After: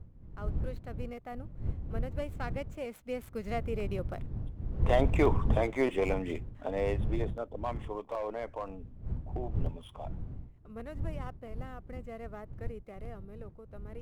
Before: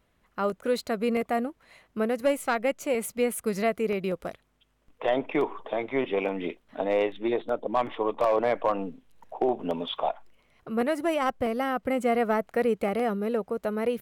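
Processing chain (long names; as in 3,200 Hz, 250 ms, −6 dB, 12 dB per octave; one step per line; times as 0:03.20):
running median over 9 samples
wind on the microphone 87 Hz −23 dBFS
source passing by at 0:05.42, 11 m/s, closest 7.5 metres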